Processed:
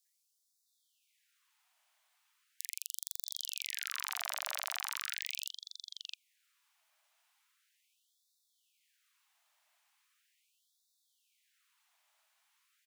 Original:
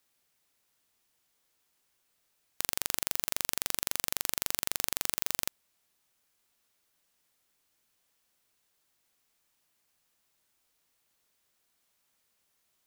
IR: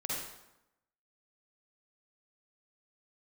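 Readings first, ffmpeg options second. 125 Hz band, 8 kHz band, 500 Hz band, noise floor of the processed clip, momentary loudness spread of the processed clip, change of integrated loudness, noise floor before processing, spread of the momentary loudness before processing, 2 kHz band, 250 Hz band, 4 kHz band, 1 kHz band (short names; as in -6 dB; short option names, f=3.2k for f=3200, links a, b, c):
under -40 dB, -6.0 dB, -12.0 dB, -79 dBFS, 9 LU, -7.5 dB, -76 dBFS, 3 LU, -2.5 dB, under -40 dB, -3.5 dB, -4.0 dB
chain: -filter_complex "[0:a]asplit=2[a][b];[b]highpass=f=720:p=1,volume=9dB,asoftclip=type=tanh:threshold=-1dB[c];[a][c]amix=inputs=2:normalize=0,lowpass=f=2.5k:p=1,volume=-6dB,acrossover=split=1500|4700[d][e][f];[d]adelay=50[g];[e]adelay=660[h];[g][h][f]amix=inputs=3:normalize=0,afftfilt=real='re*gte(b*sr/1024,560*pow(3500/560,0.5+0.5*sin(2*PI*0.39*pts/sr)))':imag='im*gte(b*sr/1024,560*pow(3500/560,0.5+0.5*sin(2*PI*0.39*pts/sr)))':win_size=1024:overlap=0.75,volume=4dB"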